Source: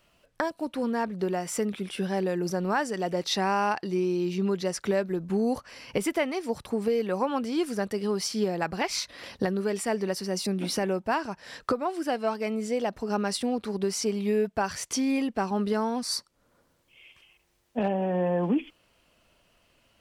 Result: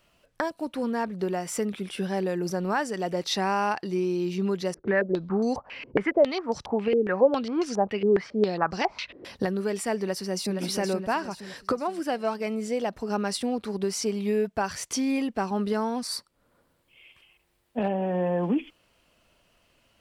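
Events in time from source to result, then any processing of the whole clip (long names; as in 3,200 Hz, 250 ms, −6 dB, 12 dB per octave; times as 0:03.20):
0:04.74–0:09.25: low-pass on a step sequencer 7.3 Hz 370–5,900 Hz
0:10.03–0:10.59: delay throw 470 ms, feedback 45%, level −6.5 dB
0:16.07–0:18.06: parametric band 6,100 Hz −7 dB 0.54 octaves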